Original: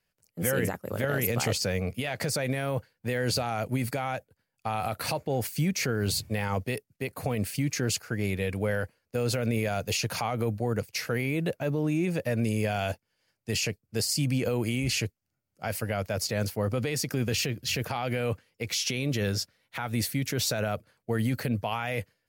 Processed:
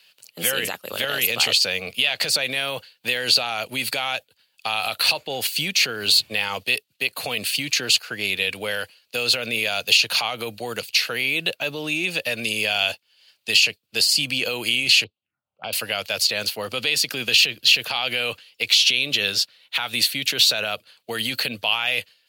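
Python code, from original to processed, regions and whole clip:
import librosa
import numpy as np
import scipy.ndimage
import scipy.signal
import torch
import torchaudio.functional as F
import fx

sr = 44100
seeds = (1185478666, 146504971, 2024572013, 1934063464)

y = fx.chain(x, sr, fx.env_lowpass(base_hz=1600.0, full_db=-29.0),
    fx.env_phaser(low_hz=240.0, high_hz=1800.0, full_db=-38.0),
    fx.air_absorb(metres=390.0), at=(15.04, 15.73))
y = fx.highpass(y, sr, hz=1200.0, slope=6)
y = fx.band_shelf(y, sr, hz=3400.0, db=12.0, octaves=1.0)
y = fx.band_squash(y, sr, depth_pct=40)
y = F.gain(torch.from_numpy(y), 7.5).numpy()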